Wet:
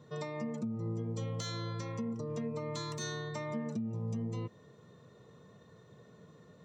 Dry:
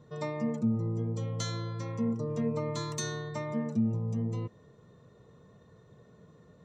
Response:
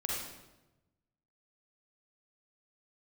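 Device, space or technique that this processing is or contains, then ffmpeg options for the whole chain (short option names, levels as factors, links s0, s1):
broadcast voice chain: -af "highpass=99,deesser=0.95,acompressor=threshold=0.0251:ratio=4,equalizer=f=3900:t=o:w=2.5:g=4,alimiter=level_in=1.68:limit=0.0631:level=0:latency=1:release=286,volume=0.596"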